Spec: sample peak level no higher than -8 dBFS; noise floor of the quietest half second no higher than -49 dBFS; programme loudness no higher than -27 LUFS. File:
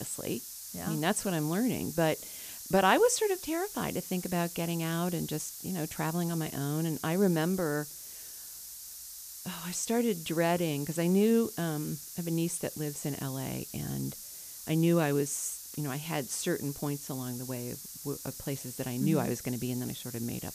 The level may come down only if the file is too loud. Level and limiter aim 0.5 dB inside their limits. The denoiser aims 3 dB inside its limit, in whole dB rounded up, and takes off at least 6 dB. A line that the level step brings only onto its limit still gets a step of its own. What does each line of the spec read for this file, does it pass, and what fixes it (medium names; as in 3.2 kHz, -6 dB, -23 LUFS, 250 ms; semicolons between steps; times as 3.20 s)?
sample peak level -10.5 dBFS: pass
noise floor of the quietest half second -45 dBFS: fail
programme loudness -31.5 LUFS: pass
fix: noise reduction 7 dB, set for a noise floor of -45 dBFS